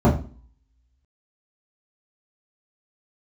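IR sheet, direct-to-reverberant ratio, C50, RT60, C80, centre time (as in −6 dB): −8.0 dB, 10.0 dB, 0.40 s, 14.5 dB, 25 ms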